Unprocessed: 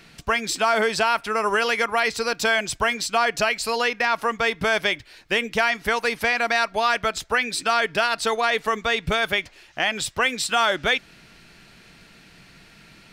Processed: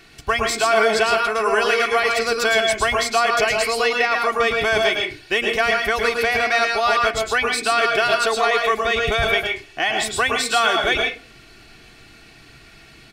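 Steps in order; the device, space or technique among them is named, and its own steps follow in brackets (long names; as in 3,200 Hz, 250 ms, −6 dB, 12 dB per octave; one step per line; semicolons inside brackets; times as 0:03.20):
microphone above a desk (comb filter 2.7 ms, depth 54%; convolution reverb RT60 0.35 s, pre-delay 104 ms, DRR 1 dB)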